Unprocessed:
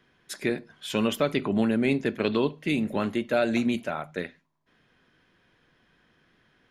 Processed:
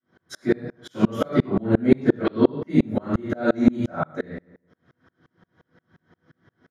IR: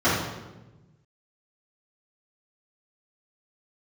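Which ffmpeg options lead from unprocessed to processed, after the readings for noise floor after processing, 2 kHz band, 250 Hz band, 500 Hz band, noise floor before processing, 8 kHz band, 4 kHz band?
-80 dBFS, -2.0 dB, +5.5 dB, +3.0 dB, -66 dBFS, no reading, -6.5 dB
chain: -filter_complex "[0:a]equalizer=f=2600:w=3.9:g=-12.5,asplit=2[s0][s1];[s1]adelay=83,lowpass=f=3600:p=1,volume=0.2,asplit=2[s2][s3];[s3]adelay=83,lowpass=f=3600:p=1,volume=0.54,asplit=2[s4][s5];[s5]adelay=83,lowpass=f=3600:p=1,volume=0.54,asplit=2[s6][s7];[s7]adelay=83,lowpass=f=3600:p=1,volume=0.54,asplit=2[s8][s9];[s9]adelay=83,lowpass=f=3600:p=1,volume=0.54[s10];[s0][s2][s4][s6][s8][s10]amix=inputs=6:normalize=0[s11];[1:a]atrim=start_sample=2205,atrim=end_sample=6174[s12];[s11][s12]afir=irnorm=-1:irlink=0,aeval=exprs='val(0)*pow(10,-34*if(lt(mod(-5.7*n/s,1),2*abs(-5.7)/1000),1-mod(-5.7*n/s,1)/(2*abs(-5.7)/1000),(mod(-5.7*n/s,1)-2*abs(-5.7)/1000)/(1-2*abs(-5.7)/1000))/20)':c=same,volume=0.398"

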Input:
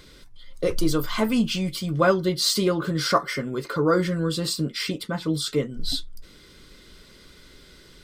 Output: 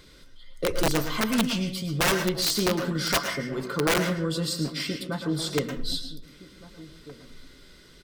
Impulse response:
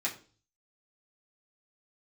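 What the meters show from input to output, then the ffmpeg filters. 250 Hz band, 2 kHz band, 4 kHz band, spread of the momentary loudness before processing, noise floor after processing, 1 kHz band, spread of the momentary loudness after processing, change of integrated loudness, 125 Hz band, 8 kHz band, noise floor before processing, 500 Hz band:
-3.0 dB, +1.5 dB, -1.0 dB, 8 LU, -52 dBFS, -3.0 dB, 8 LU, -2.0 dB, -2.5 dB, +0.5 dB, -51 dBFS, -4.0 dB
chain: -filter_complex "[0:a]aeval=exprs='(mod(4.73*val(0)+1,2)-1)/4.73':c=same,asplit=2[s0][s1];[s1]adelay=1516,volume=0.141,highshelf=f=4000:g=-34.1[s2];[s0][s2]amix=inputs=2:normalize=0,asplit=2[s3][s4];[1:a]atrim=start_sample=2205,asetrate=34839,aresample=44100,adelay=107[s5];[s4][s5]afir=irnorm=-1:irlink=0,volume=0.211[s6];[s3][s6]amix=inputs=2:normalize=0,volume=0.708"

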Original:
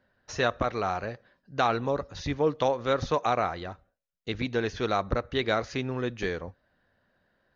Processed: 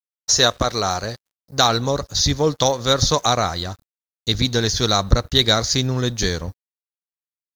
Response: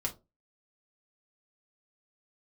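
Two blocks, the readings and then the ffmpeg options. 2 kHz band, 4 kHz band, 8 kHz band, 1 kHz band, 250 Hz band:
+6.5 dB, +19.5 dB, no reading, +6.5 dB, +8.0 dB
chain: -af "equalizer=f=6000:w=1.5:g=-7,aexciter=amount=14.3:drive=7.2:freq=4100,asubboost=boost=2.5:cutoff=210,aeval=exprs='sgn(val(0))*max(abs(val(0))-0.00335,0)':c=same,volume=2.37"

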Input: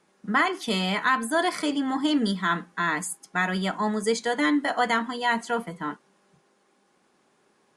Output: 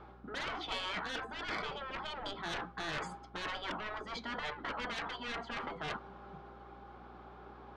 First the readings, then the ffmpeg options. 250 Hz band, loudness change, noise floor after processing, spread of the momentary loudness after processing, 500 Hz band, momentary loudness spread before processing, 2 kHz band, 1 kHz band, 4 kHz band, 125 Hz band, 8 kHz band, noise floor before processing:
-21.5 dB, -14.0 dB, -54 dBFS, 15 LU, -15.0 dB, 6 LU, -13.0 dB, -14.0 dB, -9.0 dB, -14.5 dB, -19.0 dB, -66 dBFS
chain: -af "highpass=f=130:w=0.5412,highpass=f=130:w=1.3066,equalizer=f=390:t=q:w=4:g=3,equalizer=f=790:t=q:w=4:g=9,equalizer=f=1300:t=q:w=4:g=8,equalizer=f=1900:t=q:w=4:g=-7,equalizer=f=2700:t=q:w=4:g=-6,lowpass=f=3300:w=0.5412,lowpass=f=3300:w=1.3066,areverse,acompressor=threshold=0.0282:ratio=20,areverse,asoftclip=type=tanh:threshold=0.0211,aeval=exprs='val(0)+0.000501*(sin(2*PI*60*n/s)+sin(2*PI*2*60*n/s)/2+sin(2*PI*3*60*n/s)/3+sin(2*PI*4*60*n/s)/4+sin(2*PI*5*60*n/s)/5)':c=same,afftfilt=real='re*lt(hypot(re,im),0.0282)':imag='im*lt(hypot(re,im),0.0282)':win_size=1024:overlap=0.75,volume=2.82"

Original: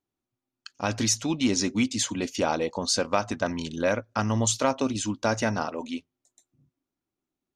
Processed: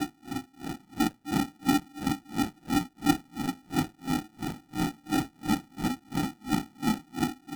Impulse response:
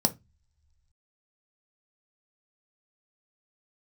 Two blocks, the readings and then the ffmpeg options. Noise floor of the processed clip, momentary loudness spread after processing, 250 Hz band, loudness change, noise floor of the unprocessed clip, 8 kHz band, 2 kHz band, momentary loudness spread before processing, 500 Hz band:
-62 dBFS, 9 LU, +0.5 dB, -4.5 dB, under -85 dBFS, -12.0 dB, -4.5 dB, 7 LU, -13.0 dB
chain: -filter_complex "[0:a]aeval=exprs='val(0)+0.5*0.0178*sgn(val(0))':c=same,aecho=1:1:520|910|1202|1422|1586:0.631|0.398|0.251|0.158|0.1,acrossover=split=660|2400[s0][s1][s2];[s1]acontrast=90[s3];[s2]aemphasis=mode=production:type=50fm[s4];[s0][s3][s4]amix=inputs=3:normalize=0,aresample=11025,aresample=44100,asplit=2[s5][s6];[s6]alimiter=limit=0.0841:level=0:latency=1,volume=0.891[s7];[s5][s7]amix=inputs=2:normalize=0,aeval=exprs='0.0708*(abs(mod(val(0)/0.0708+3,4)-2)-1)':c=same,asplit=3[s8][s9][s10];[s8]bandpass=f=300:t=q:w=8,volume=1[s11];[s9]bandpass=f=870:t=q:w=8,volume=0.501[s12];[s10]bandpass=f=2240:t=q:w=8,volume=0.355[s13];[s11][s12][s13]amix=inputs=3:normalize=0[s14];[1:a]atrim=start_sample=2205[s15];[s14][s15]afir=irnorm=-1:irlink=0,acrusher=samples=41:mix=1:aa=0.000001,aeval=exprs='val(0)*pow(10,-36*(0.5-0.5*cos(2*PI*2.9*n/s))/20)':c=same,volume=1.26"

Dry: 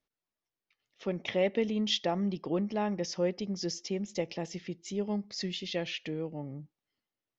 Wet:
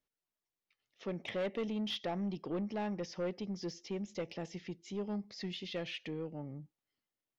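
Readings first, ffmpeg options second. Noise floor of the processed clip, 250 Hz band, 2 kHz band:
under -85 dBFS, -5.5 dB, -5.5 dB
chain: -filter_complex "[0:a]asoftclip=type=tanh:threshold=0.0447,acrossover=split=4300[s0][s1];[s1]acompressor=threshold=0.002:ratio=4:attack=1:release=60[s2];[s0][s2]amix=inputs=2:normalize=0,volume=0.668"

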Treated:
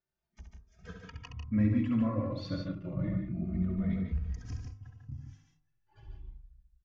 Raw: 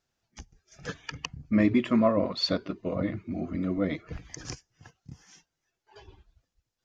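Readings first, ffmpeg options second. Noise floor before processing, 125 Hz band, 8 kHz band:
-84 dBFS, +3.0 dB, no reading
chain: -filter_complex "[0:a]highshelf=f=3300:g=-12,bandreject=f=50.32:t=h:w=4,bandreject=f=100.64:t=h:w=4,bandreject=f=150.96:t=h:w=4,bandreject=f=201.28:t=h:w=4,bandreject=f=251.6:t=h:w=4,bandreject=f=301.92:t=h:w=4,bandreject=f=352.24:t=h:w=4,bandreject=f=402.56:t=h:w=4,bandreject=f=452.88:t=h:w=4,bandreject=f=503.2:t=h:w=4,bandreject=f=553.52:t=h:w=4,bandreject=f=603.84:t=h:w=4,bandreject=f=654.16:t=h:w=4,bandreject=f=704.48:t=h:w=4,bandreject=f=754.8:t=h:w=4,bandreject=f=805.12:t=h:w=4,bandreject=f=855.44:t=h:w=4,bandreject=f=905.76:t=h:w=4,bandreject=f=956.08:t=h:w=4,bandreject=f=1006.4:t=h:w=4,bandreject=f=1056.72:t=h:w=4,bandreject=f=1107.04:t=h:w=4,bandreject=f=1157.36:t=h:w=4,bandreject=f=1207.68:t=h:w=4,bandreject=f=1258:t=h:w=4,bandreject=f=1308.32:t=h:w=4,bandreject=f=1358.64:t=h:w=4,asplit=2[s0][s1];[s1]aecho=0:1:67.06|145.8|177.8:0.501|0.562|0.282[s2];[s0][s2]amix=inputs=2:normalize=0,asubboost=boost=10.5:cutoff=150,asplit=2[s3][s4];[s4]adelay=2.9,afreqshift=0.3[s5];[s3][s5]amix=inputs=2:normalize=1,volume=0.447"

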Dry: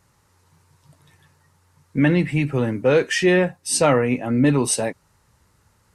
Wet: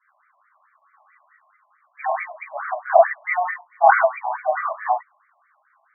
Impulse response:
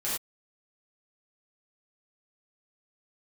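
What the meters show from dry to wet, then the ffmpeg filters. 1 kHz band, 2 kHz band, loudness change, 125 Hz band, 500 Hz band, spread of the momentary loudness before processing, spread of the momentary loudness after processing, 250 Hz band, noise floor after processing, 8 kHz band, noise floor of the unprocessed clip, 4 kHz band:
+11.0 dB, +1.5 dB, -1.5 dB, under -40 dB, -1.5 dB, 5 LU, 13 LU, under -40 dB, -65 dBFS, under -40 dB, -62 dBFS, under -40 dB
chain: -filter_complex "[0:a]highpass=f=290:t=q:w=0.5412,highpass=f=290:t=q:w=1.307,lowpass=f=2300:t=q:w=0.5176,lowpass=f=2300:t=q:w=0.7071,lowpass=f=2300:t=q:w=1.932,afreqshift=180[s0];[1:a]atrim=start_sample=2205[s1];[s0][s1]afir=irnorm=-1:irlink=0,afftfilt=real='re*between(b*sr/1024,790*pow(1700/790,0.5+0.5*sin(2*PI*4.6*pts/sr))/1.41,790*pow(1700/790,0.5+0.5*sin(2*PI*4.6*pts/sr))*1.41)':imag='im*between(b*sr/1024,790*pow(1700/790,0.5+0.5*sin(2*PI*4.6*pts/sr))/1.41,790*pow(1700/790,0.5+0.5*sin(2*PI*4.6*pts/sr))*1.41)':win_size=1024:overlap=0.75,volume=1.19"

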